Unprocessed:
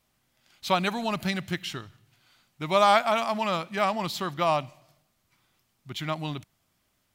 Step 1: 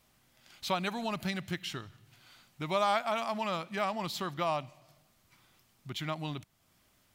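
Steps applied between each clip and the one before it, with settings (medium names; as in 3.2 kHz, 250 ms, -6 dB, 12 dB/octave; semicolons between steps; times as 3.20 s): compression 1.5:1, threshold -53 dBFS, peak gain reduction 13 dB; trim +4 dB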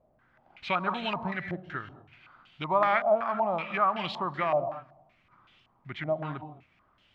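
gated-style reverb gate 240 ms rising, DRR 10 dB; step-sequenced low-pass 5.3 Hz 630–3000 Hz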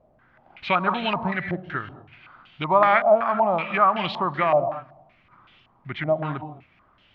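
low-pass 4.1 kHz 12 dB/octave; trim +7 dB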